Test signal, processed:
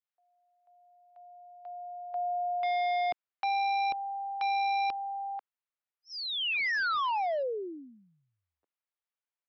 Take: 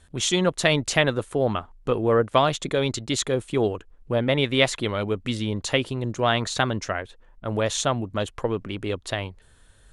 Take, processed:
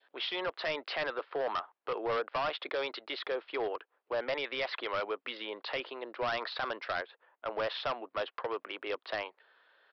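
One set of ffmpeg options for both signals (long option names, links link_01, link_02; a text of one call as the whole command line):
ffmpeg -i in.wav -filter_complex "[0:a]alimiter=limit=-15.5dB:level=0:latency=1:release=66,adynamicequalizer=threshold=0.0178:dfrequency=1300:dqfactor=1.4:tfrequency=1300:tqfactor=1.4:attack=5:release=100:ratio=0.375:range=1.5:mode=boostabove:tftype=bell,highpass=frequency=300:width=0.5412,highpass=frequency=300:width=1.3066,acrossover=split=480 3200:gain=0.1 1 0.178[link_01][link_02][link_03];[link_01][link_02][link_03]amix=inputs=3:normalize=0,aresample=11025,asoftclip=type=hard:threshold=-27dB,aresample=44100,volume=-1dB" out.wav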